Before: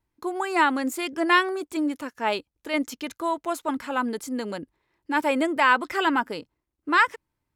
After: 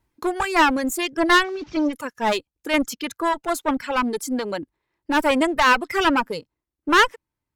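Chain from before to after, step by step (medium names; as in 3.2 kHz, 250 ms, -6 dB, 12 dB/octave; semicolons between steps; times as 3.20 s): 1.44–1.93 s: one-bit delta coder 32 kbps, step -39.5 dBFS; one-sided clip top -30.5 dBFS; reverb removal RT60 2 s; trim +7.5 dB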